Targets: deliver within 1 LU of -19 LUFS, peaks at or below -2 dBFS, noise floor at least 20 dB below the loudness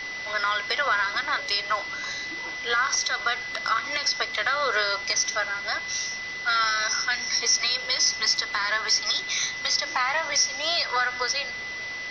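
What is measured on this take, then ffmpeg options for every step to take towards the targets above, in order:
steady tone 2 kHz; tone level -32 dBFS; noise floor -34 dBFS; noise floor target -45 dBFS; loudness -24.5 LUFS; peak level -10.5 dBFS; loudness target -19.0 LUFS
-> -af "bandreject=f=2000:w=30"
-af "afftdn=nr=11:nf=-34"
-af "volume=1.88"

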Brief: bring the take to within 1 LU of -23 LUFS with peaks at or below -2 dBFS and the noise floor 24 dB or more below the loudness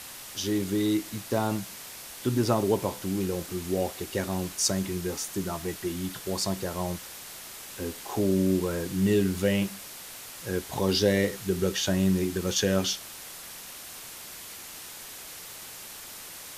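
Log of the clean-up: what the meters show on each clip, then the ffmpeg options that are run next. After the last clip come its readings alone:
noise floor -43 dBFS; noise floor target -52 dBFS; loudness -28.0 LUFS; peak level -10.5 dBFS; loudness target -23.0 LUFS
-> -af "afftdn=nr=9:nf=-43"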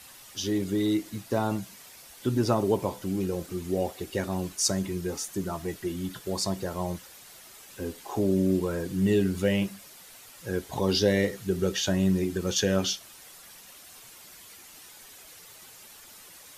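noise floor -50 dBFS; noise floor target -53 dBFS
-> -af "afftdn=nr=6:nf=-50"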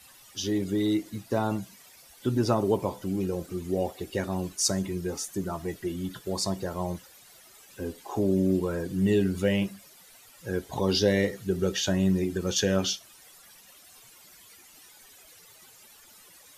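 noise floor -54 dBFS; loudness -28.5 LUFS; peak level -10.5 dBFS; loudness target -23.0 LUFS
-> -af "volume=1.88"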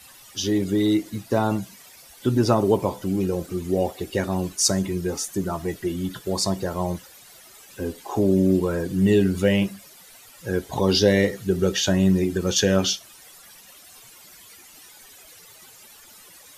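loudness -23.0 LUFS; peak level -5.0 dBFS; noise floor -48 dBFS

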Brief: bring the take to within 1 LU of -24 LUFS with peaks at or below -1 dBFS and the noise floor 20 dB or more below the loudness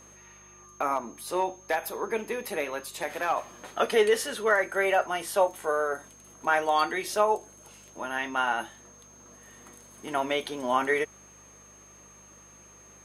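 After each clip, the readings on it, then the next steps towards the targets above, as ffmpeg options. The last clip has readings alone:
hum 50 Hz; highest harmonic 200 Hz; hum level -59 dBFS; steady tone 6.4 kHz; tone level -52 dBFS; loudness -28.0 LUFS; peak level -10.5 dBFS; loudness target -24.0 LUFS
-> -af "bandreject=f=50:t=h:w=4,bandreject=f=100:t=h:w=4,bandreject=f=150:t=h:w=4,bandreject=f=200:t=h:w=4"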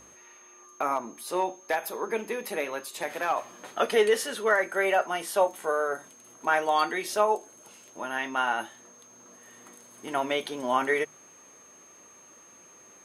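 hum not found; steady tone 6.4 kHz; tone level -52 dBFS
-> -af "bandreject=f=6400:w=30"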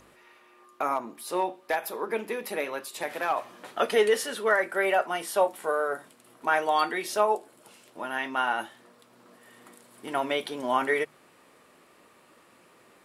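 steady tone not found; loudness -28.0 LUFS; peak level -10.5 dBFS; loudness target -24.0 LUFS
-> -af "volume=1.58"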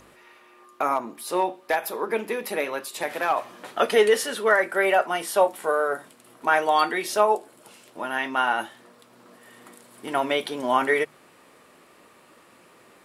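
loudness -24.0 LUFS; peak level -6.5 dBFS; noise floor -55 dBFS

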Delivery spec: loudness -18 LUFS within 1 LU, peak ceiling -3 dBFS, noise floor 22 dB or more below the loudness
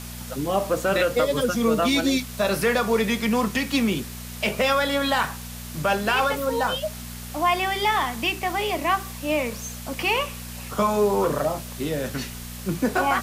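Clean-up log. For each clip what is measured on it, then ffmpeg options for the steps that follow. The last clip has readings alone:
hum 60 Hz; highest harmonic 240 Hz; hum level -35 dBFS; noise floor -36 dBFS; noise floor target -46 dBFS; loudness -23.5 LUFS; peak level -10.5 dBFS; loudness target -18.0 LUFS
-> -af "bandreject=f=60:t=h:w=4,bandreject=f=120:t=h:w=4,bandreject=f=180:t=h:w=4,bandreject=f=240:t=h:w=4"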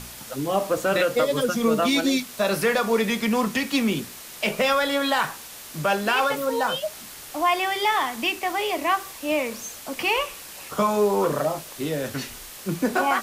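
hum not found; noise floor -41 dBFS; noise floor target -46 dBFS
-> -af "afftdn=nr=6:nf=-41"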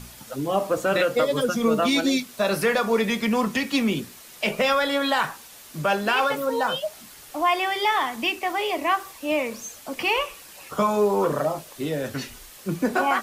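noise floor -46 dBFS; loudness -24.0 LUFS; peak level -11.0 dBFS; loudness target -18.0 LUFS
-> -af "volume=2"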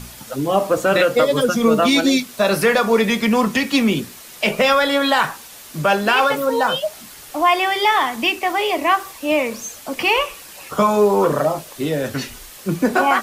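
loudness -18.0 LUFS; peak level -5.0 dBFS; noise floor -40 dBFS

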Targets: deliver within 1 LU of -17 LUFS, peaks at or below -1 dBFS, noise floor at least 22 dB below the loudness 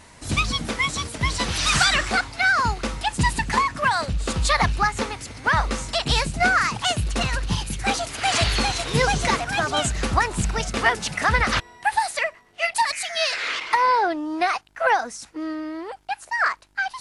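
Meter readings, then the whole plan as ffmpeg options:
loudness -22.5 LUFS; peak level -7.0 dBFS; loudness target -17.0 LUFS
-> -af "volume=1.88"

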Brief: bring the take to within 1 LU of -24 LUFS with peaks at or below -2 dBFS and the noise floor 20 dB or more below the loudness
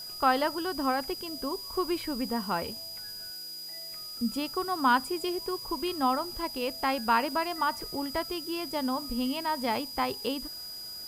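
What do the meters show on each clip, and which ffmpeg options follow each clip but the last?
steady tone 4.9 kHz; tone level -39 dBFS; noise floor -41 dBFS; noise floor target -51 dBFS; loudness -30.5 LUFS; peak level -11.0 dBFS; loudness target -24.0 LUFS
-> -af "bandreject=f=4900:w=30"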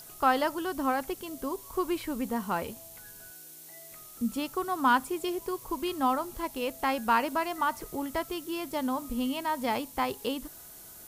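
steady tone not found; noise floor -49 dBFS; noise floor target -51 dBFS
-> -af "afftdn=nr=6:nf=-49"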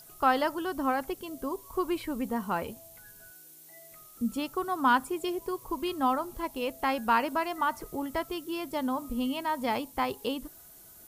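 noise floor -53 dBFS; loudness -31.0 LUFS; peak level -11.5 dBFS; loudness target -24.0 LUFS
-> -af "volume=2.24"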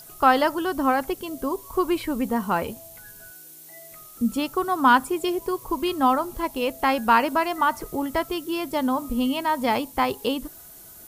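loudness -24.0 LUFS; peak level -4.5 dBFS; noise floor -46 dBFS

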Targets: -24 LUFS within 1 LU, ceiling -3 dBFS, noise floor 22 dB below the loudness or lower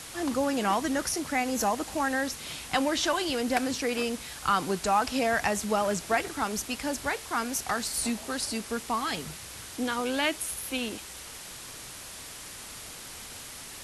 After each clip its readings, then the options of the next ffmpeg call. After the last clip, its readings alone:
noise floor -43 dBFS; noise floor target -51 dBFS; loudness -29.0 LUFS; peak level -13.5 dBFS; loudness target -24.0 LUFS
-> -af "afftdn=nr=8:nf=-43"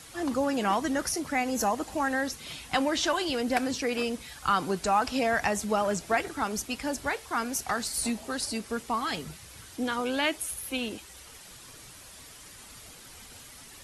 noise floor -49 dBFS; noise floor target -51 dBFS
-> -af "afftdn=nr=6:nf=-49"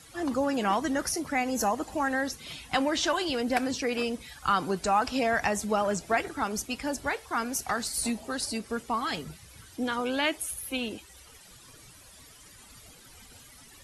noise floor -53 dBFS; loudness -29.5 LUFS; peak level -13.5 dBFS; loudness target -24.0 LUFS
-> -af "volume=1.88"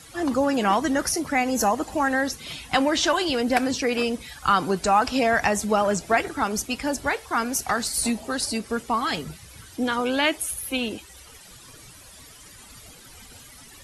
loudness -24.0 LUFS; peak level -8.0 dBFS; noise floor -47 dBFS

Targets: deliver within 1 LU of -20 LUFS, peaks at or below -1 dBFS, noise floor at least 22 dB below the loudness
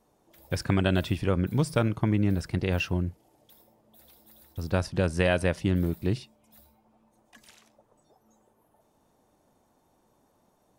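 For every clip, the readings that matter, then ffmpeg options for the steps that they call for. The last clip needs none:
loudness -27.5 LUFS; peak level -10.0 dBFS; loudness target -20.0 LUFS
-> -af "volume=2.37"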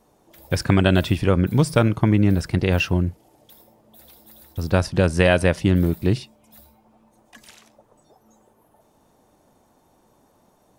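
loudness -20.0 LUFS; peak level -2.5 dBFS; noise floor -61 dBFS

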